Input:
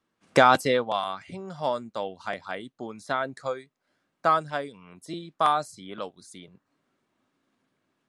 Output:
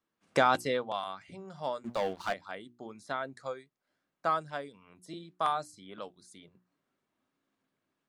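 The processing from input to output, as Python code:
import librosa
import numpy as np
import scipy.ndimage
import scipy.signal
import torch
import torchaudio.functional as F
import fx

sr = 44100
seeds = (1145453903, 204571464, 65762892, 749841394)

y = fx.hum_notches(x, sr, base_hz=60, count=6)
y = fx.leveller(y, sr, passes=3, at=(1.84, 2.33))
y = y * librosa.db_to_amplitude(-7.5)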